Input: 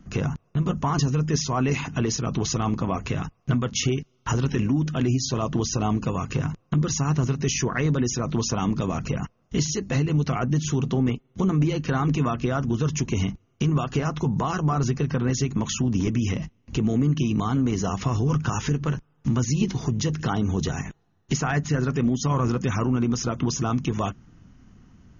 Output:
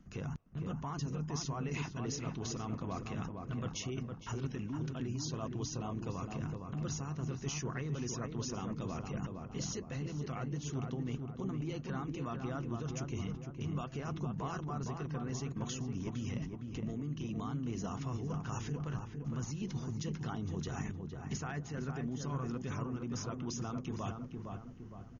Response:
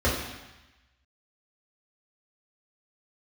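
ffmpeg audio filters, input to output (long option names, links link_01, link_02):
-filter_complex "[0:a]areverse,acompressor=threshold=-32dB:ratio=4,areverse,asplit=2[link_01][link_02];[link_02]adelay=461,lowpass=frequency=1400:poles=1,volume=-4dB,asplit=2[link_03][link_04];[link_04]adelay=461,lowpass=frequency=1400:poles=1,volume=0.49,asplit=2[link_05][link_06];[link_06]adelay=461,lowpass=frequency=1400:poles=1,volume=0.49,asplit=2[link_07][link_08];[link_08]adelay=461,lowpass=frequency=1400:poles=1,volume=0.49,asplit=2[link_09][link_10];[link_10]adelay=461,lowpass=frequency=1400:poles=1,volume=0.49,asplit=2[link_11][link_12];[link_12]adelay=461,lowpass=frequency=1400:poles=1,volume=0.49[link_13];[link_01][link_03][link_05][link_07][link_09][link_11][link_13]amix=inputs=7:normalize=0,volume=-6.5dB"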